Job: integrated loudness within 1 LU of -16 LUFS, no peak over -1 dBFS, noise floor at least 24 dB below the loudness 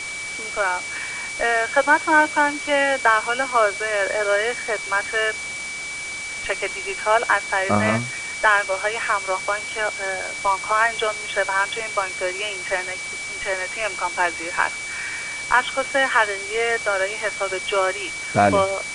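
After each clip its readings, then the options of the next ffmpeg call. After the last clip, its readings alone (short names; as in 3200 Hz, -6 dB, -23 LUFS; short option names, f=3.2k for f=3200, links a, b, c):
steady tone 2300 Hz; tone level -29 dBFS; noise floor -31 dBFS; noise floor target -46 dBFS; loudness -21.5 LUFS; peak -3.0 dBFS; loudness target -16.0 LUFS
-> -af "bandreject=f=2.3k:w=30"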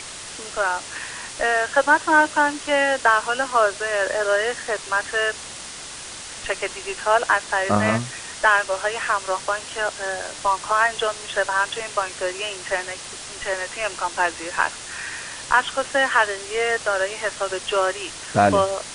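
steady tone none; noise floor -36 dBFS; noise floor target -46 dBFS
-> -af "afftdn=nr=10:nf=-36"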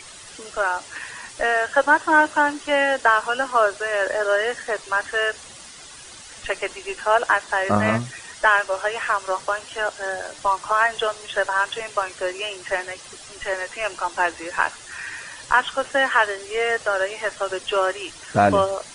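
noise floor -42 dBFS; noise floor target -46 dBFS
-> -af "afftdn=nr=6:nf=-42"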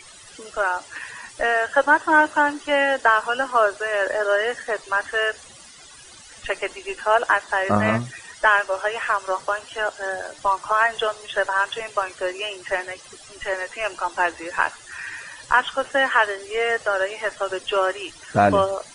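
noise floor -45 dBFS; noise floor target -46 dBFS
-> -af "afftdn=nr=6:nf=-45"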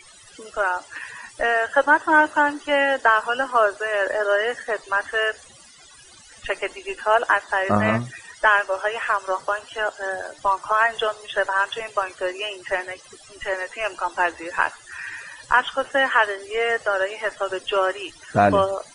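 noise floor -48 dBFS; loudness -22.0 LUFS; peak -4.0 dBFS; loudness target -16.0 LUFS
-> -af "volume=6dB,alimiter=limit=-1dB:level=0:latency=1"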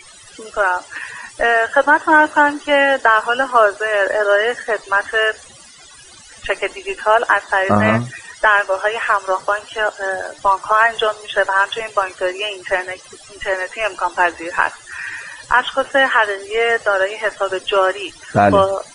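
loudness -16.5 LUFS; peak -1.0 dBFS; noise floor -42 dBFS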